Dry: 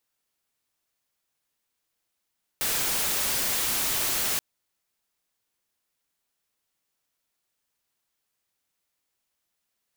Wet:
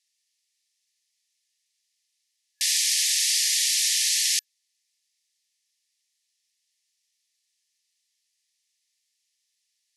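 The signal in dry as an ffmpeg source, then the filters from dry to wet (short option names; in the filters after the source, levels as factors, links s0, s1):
-f lavfi -i "anoisesrc=c=white:a=0.0819:d=1.78:r=44100:seed=1"
-af "afftfilt=real='re*between(b*sr/4096,1700,12000)':imag='im*between(b*sr/4096,1700,12000)':win_size=4096:overlap=0.75,equalizer=f=5300:t=o:w=1.4:g=10.5"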